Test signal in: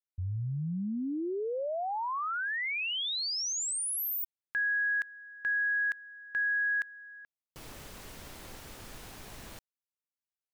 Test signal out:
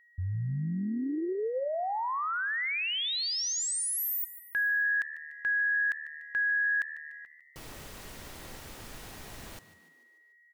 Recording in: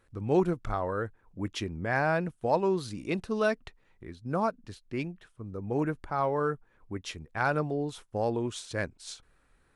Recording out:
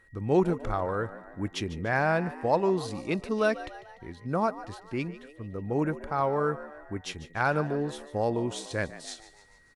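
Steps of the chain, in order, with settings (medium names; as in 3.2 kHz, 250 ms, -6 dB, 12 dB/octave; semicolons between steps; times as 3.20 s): whistle 1.9 kHz -61 dBFS; frequency-shifting echo 147 ms, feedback 53%, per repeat +76 Hz, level -15.5 dB; trim +1.5 dB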